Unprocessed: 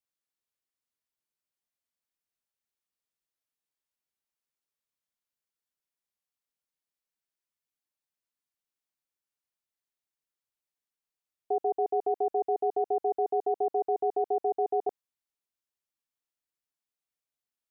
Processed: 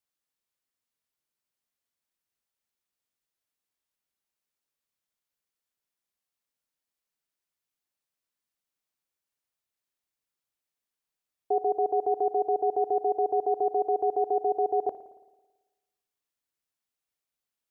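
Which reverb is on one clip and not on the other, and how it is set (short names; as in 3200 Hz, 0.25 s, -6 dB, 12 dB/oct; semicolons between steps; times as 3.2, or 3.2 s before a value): spring tank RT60 1.2 s, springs 55 ms, chirp 25 ms, DRR 13 dB; gain +2.5 dB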